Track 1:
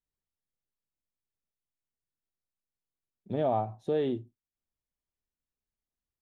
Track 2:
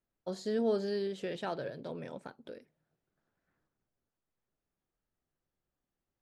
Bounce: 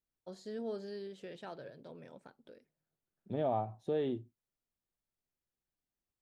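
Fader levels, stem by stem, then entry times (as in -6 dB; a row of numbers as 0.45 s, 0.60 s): -5.0 dB, -9.5 dB; 0.00 s, 0.00 s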